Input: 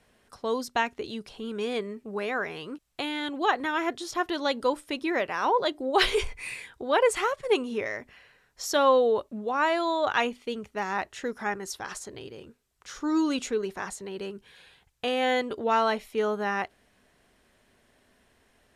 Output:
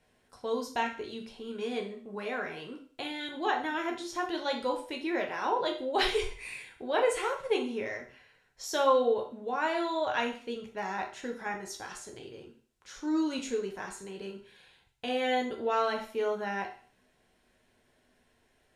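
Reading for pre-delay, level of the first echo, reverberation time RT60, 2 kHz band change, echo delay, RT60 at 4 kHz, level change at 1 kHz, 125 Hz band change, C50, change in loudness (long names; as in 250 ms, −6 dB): 8 ms, no echo audible, 0.45 s, −5.0 dB, no echo audible, 0.45 s, −4.5 dB, can't be measured, 8.5 dB, −4.5 dB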